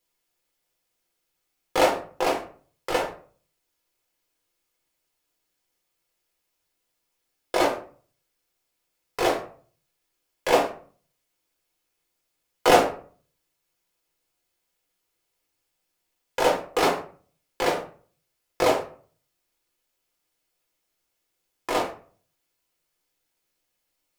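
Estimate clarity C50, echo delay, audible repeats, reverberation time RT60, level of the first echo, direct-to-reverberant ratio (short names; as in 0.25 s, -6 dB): 8.0 dB, none, none, 0.45 s, none, -1.5 dB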